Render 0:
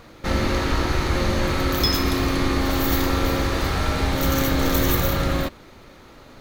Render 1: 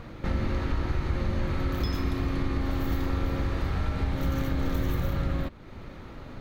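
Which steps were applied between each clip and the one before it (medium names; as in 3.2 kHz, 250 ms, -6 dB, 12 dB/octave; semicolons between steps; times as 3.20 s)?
tone controls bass +8 dB, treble -10 dB; compression 2:1, threshold -34 dBFS, peak gain reduction 13 dB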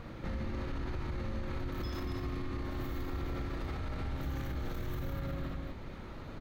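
loudspeakers at several distances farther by 20 m -5 dB, 82 m -8 dB; peak limiter -25.5 dBFS, peak gain reduction 12 dB; trim -4 dB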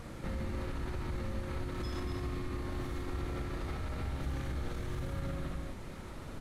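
one-bit delta coder 64 kbps, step -51.5 dBFS; on a send at -16.5 dB: reverberation RT60 0.80 s, pre-delay 5 ms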